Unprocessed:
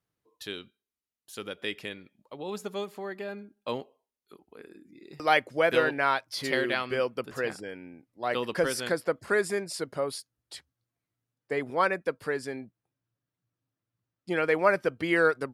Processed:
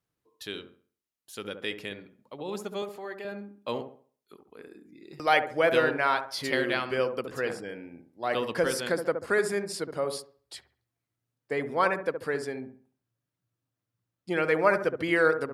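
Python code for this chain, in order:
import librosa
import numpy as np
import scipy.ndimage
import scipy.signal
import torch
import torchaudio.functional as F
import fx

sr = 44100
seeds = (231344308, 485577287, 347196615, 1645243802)

y = fx.highpass(x, sr, hz=420.0, slope=6, at=(2.82, 3.25))
y = fx.echo_wet_lowpass(y, sr, ms=69, feedback_pct=33, hz=1200.0, wet_db=-7)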